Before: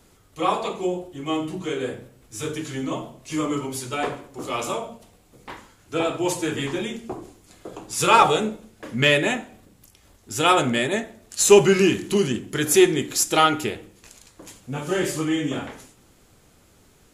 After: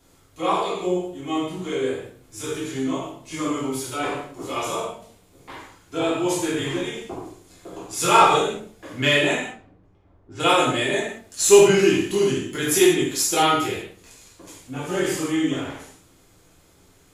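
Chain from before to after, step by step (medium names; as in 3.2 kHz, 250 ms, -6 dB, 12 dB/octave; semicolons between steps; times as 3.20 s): 9.14–10.40 s: level-controlled noise filter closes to 920 Hz, open at -19 dBFS; gated-style reverb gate 220 ms falling, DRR -6 dB; trim -6.5 dB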